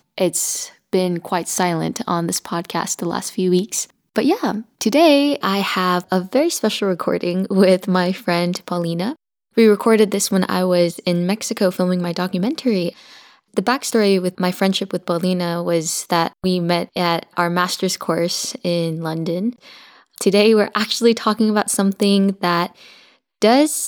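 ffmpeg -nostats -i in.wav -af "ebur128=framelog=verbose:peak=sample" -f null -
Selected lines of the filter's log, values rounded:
Integrated loudness:
  I:         -18.6 LUFS
  Threshold: -28.8 LUFS
Loudness range:
  LRA:         3.6 LU
  Threshold: -38.8 LUFS
  LRA low:   -20.8 LUFS
  LRA high:  -17.2 LUFS
Sample peak:
  Peak:       -2.9 dBFS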